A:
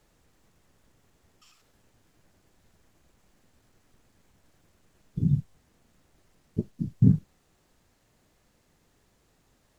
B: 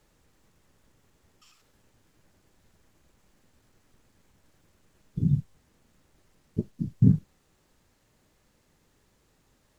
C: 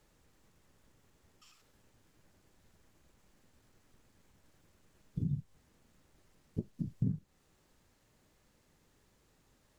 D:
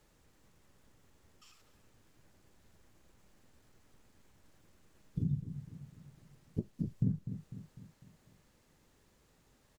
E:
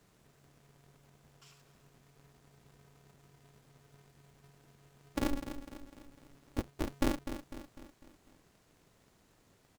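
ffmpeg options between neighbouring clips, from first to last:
-af "bandreject=f=700:w=15"
-af "acompressor=threshold=0.0316:ratio=3,volume=0.708"
-filter_complex "[0:a]asplit=2[s0][s1];[s1]adelay=250,lowpass=f=2000:p=1,volume=0.299,asplit=2[s2][s3];[s3]adelay=250,lowpass=f=2000:p=1,volume=0.5,asplit=2[s4][s5];[s5]adelay=250,lowpass=f=2000:p=1,volume=0.5,asplit=2[s6][s7];[s7]adelay=250,lowpass=f=2000:p=1,volume=0.5,asplit=2[s8][s9];[s9]adelay=250,lowpass=f=2000:p=1,volume=0.5[s10];[s0][s2][s4][s6][s8][s10]amix=inputs=6:normalize=0,volume=1.12"
-af "aeval=exprs='val(0)*sgn(sin(2*PI*140*n/s))':c=same,volume=1.12"

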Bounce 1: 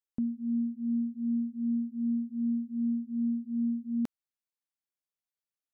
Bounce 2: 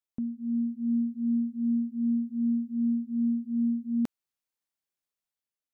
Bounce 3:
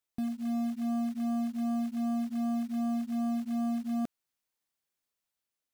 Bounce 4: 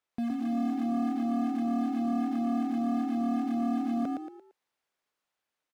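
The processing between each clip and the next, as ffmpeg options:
-af "dynaudnorm=f=120:g=9:m=1.68,volume=0.841"
-af "asoftclip=type=tanh:threshold=0.0251,acrusher=bits=5:mode=log:mix=0:aa=0.000001,volume=1.41"
-filter_complex "[0:a]asplit=5[s0][s1][s2][s3][s4];[s1]adelay=114,afreqshift=38,volume=0.596[s5];[s2]adelay=228,afreqshift=76,volume=0.197[s6];[s3]adelay=342,afreqshift=114,volume=0.0646[s7];[s4]adelay=456,afreqshift=152,volume=0.0214[s8];[s0][s5][s6][s7][s8]amix=inputs=5:normalize=0,asplit=2[s9][s10];[s10]highpass=f=720:p=1,volume=4.47,asoftclip=type=tanh:threshold=0.0708[s11];[s9][s11]amix=inputs=2:normalize=0,lowpass=f=1300:p=1,volume=0.501,volume=1.33"

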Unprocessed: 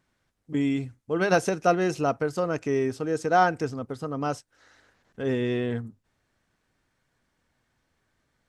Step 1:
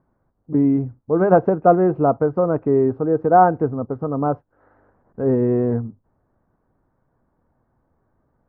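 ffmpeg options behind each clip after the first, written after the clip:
-af "lowpass=f=1100:w=0.5412,lowpass=f=1100:w=1.3066,volume=2.66"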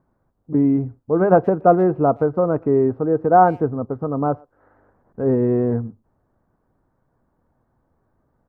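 -filter_complex "[0:a]asplit=2[s0][s1];[s1]adelay=120,highpass=300,lowpass=3400,asoftclip=type=hard:threshold=0.316,volume=0.0447[s2];[s0][s2]amix=inputs=2:normalize=0"

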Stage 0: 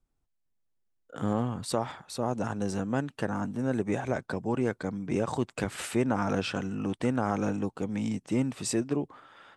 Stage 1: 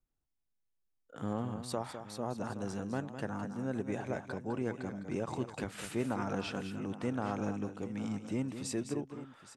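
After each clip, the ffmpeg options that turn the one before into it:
-af "bandreject=f=8000:w=20,aecho=1:1:206|818:0.335|0.178,volume=0.422"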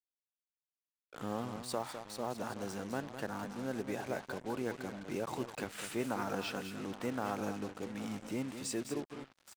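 -af "lowshelf=f=200:g=-10.5,acrusher=bits=7:mix=0:aa=0.5,volume=1.12"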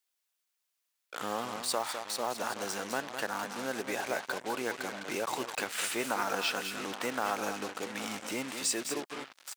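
-filter_complex "[0:a]highpass=f=1100:p=1,asplit=2[s0][s1];[s1]acompressor=threshold=0.00316:ratio=6,volume=0.891[s2];[s0][s2]amix=inputs=2:normalize=0,volume=2.66"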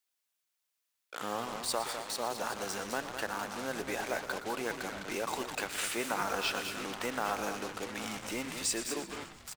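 -filter_complex "[0:a]asplit=8[s0][s1][s2][s3][s4][s5][s6][s7];[s1]adelay=118,afreqshift=-96,volume=0.237[s8];[s2]adelay=236,afreqshift=-192,volume=0.14[s9];[s3]adelay=354,afreqshift=-288,volume=0.0822[s10];[s4]adelay=472,afreqshift=-384,volume=0.049[s11];[s5]adelay=590,afreqshift=-480,volume=0.0288[s12];[s6]adelay=708,afreqshift=-576,volume=0.017[s13];[s7]adelay=826,afreqshift=-672,volume=0.01[s14];[s0][s8][s9][s10][s11][s12][s13][s14]amix=inputs=8:normalize=0,volume=0.841"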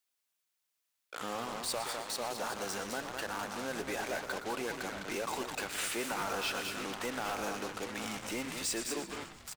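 -af "volume=31.6,asoftclip=hard,volume=0.0316"

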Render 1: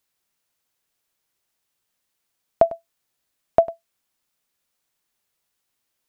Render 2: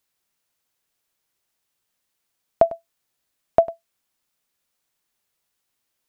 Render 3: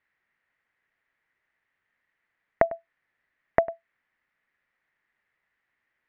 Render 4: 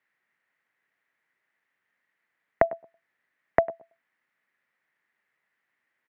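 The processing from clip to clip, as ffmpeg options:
-af anull
-af "acompressor=threshold=0.141:ratio=6,lowpass=f=1900:t=q:w=5.8,volume=0.891"
-filter_complex "[0:a]acrossover=split=110|990[s0][s1][s2];[s0]aeval=exprs='val(0)*gte(abs(val(0)),0.00631)':c=same[s3];[s1]aecho=1:1:114|228:0.0891|0.0232[s4];[s3][s4][s2]amix=inputs=3:normalize=0"

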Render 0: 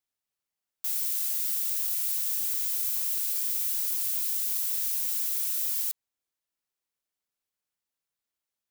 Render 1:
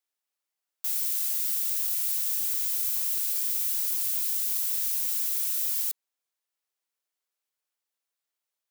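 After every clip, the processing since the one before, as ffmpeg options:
-af "highpass=380,volume=1.12"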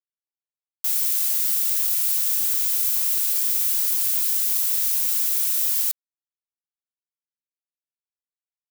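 -af "aeval=exprs='sgn(val(0))*max(abs(val(0))-0.00473,0)':c=same,volume=2.24"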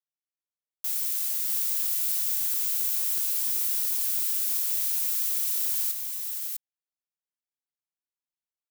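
-af "aecho=1:1:654:0.596,volume=0.473"

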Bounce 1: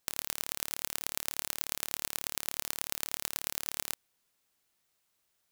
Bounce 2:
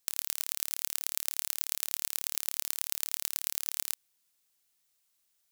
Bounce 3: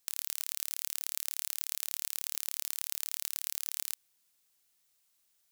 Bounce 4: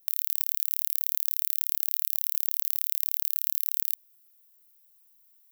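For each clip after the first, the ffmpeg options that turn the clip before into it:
-af "highshelf=f=2700:g=11,volume=0.422"
-af "asoftclip=type=tanh:threshold=0.376,volume=1.19"
-af "aexciter=amount=3.7:drive=7.8:freq=11000,volume=0.708"

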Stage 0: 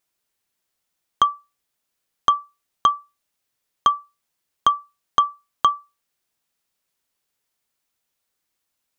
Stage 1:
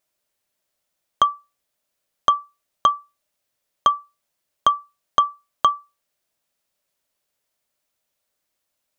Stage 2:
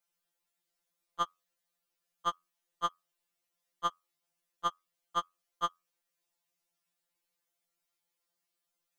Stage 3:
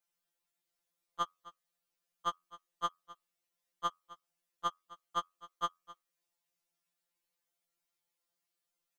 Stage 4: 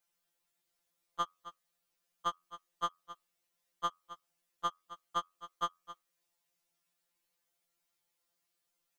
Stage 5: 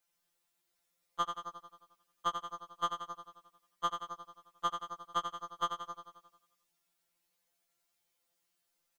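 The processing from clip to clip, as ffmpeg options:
-af "equalizer=f=600:t=o:w=0.28:g=9.5"
-af "afftfilt=real='re*2.83*eq(mod(b,8),0)':imag='im*2.83*eq(mod(b,8),0)':win_size=2048:overlap=0.75,volume=0.562"
-af "aecho=1:1:261:0.119,volume=0.75"
-af "acompressor=threshold=0.0158:ratio=2.5,volume=1.58"
-af "aecho=1:1:89|178|267|356|445|534|623|712:0.447|0.264|0.155|0.0917|0.0541|0.0319|0.0188|0.0111,volume=1.12"

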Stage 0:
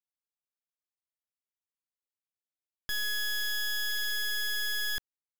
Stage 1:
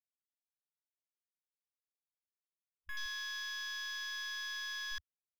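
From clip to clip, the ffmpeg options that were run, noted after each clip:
-af "afwtdn=0.0158,volume=0.422"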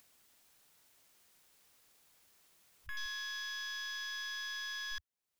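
-af "acompressor=mode=upward:threshold=0.00631:ratio=2.5"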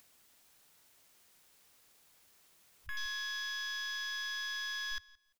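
-af "aecho=1:1:172|344:0.0708|0.0156,volume=1.26"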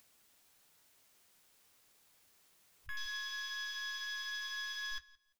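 -af "flanger=delay=9:depth=2:regen=-55:speed=0.59:shape=triangular,volume=1.19"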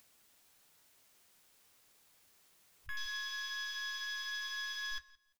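-filter_complex "[0:a]asplit=2[s0][s1];[s1]adelay=120,highpass=300,lowpass=3400,asoftclip=type=hard:threshold=0.0106,volume=0.0794[s2];[s0][s2]amix=inputs=2:normalize=0,volume=1.12"

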